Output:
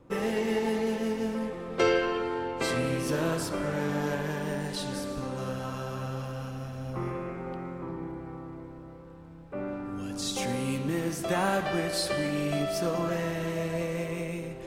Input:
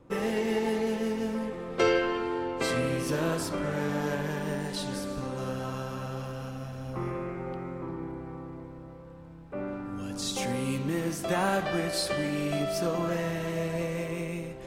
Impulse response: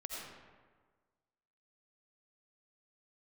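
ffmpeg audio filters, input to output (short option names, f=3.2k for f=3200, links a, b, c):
-filter_complex "[0:a]asplit=2[a][b];[1:a]atrim=start_sample=2205,asetrate=48510,aresample=44100,adelay=116[c];[b][c]afir=irnorm=-1:irlink=0,volume=-13dB[d];[a][d]amix=inputs=2:normalize=0"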